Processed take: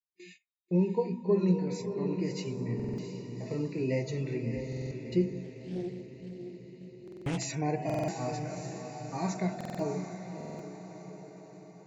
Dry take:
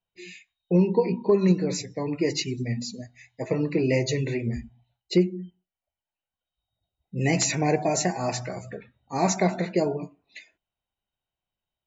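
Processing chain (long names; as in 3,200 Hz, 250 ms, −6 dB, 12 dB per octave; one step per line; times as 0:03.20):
harmonic and percussive parts rebalanced percussive −11 dB
noise gate −46 dBFS, range −17 dB
feedback delay with all-pass diffusion 659 ms, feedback 53%, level −7 dB
buffer that repeats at 0:02.75/0:04.68/0:07.03/0:07.85/0:09.56/0:10.36, samples 2,048, times 4
0:05.44–0:07.38: highs frequency-modulated by the lows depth 0.53 ms
level −6 dB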